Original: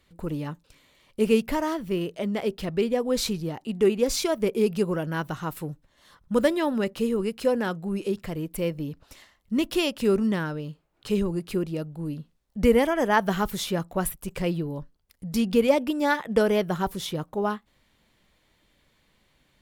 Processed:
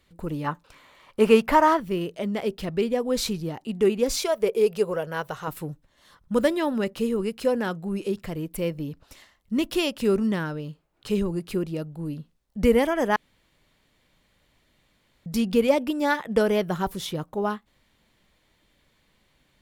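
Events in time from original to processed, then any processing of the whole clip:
0:00.44–0:01.80: parametric band 1,100 Hz +13.5 dB 2 octaves
0:04.19–0:05.48: low shelf with overshoot 370 Hz −6 dB, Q 3
0:13.16–0:15.26: fill with room tone

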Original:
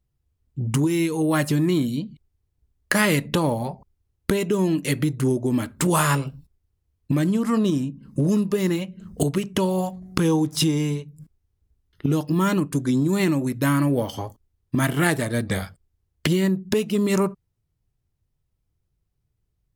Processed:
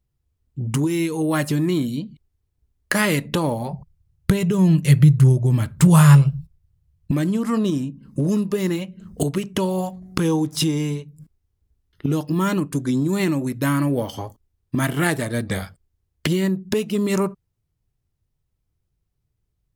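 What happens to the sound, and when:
0:03.71–0:07.11: low shelf with overshoot 200 Hz +8 dB, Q 3

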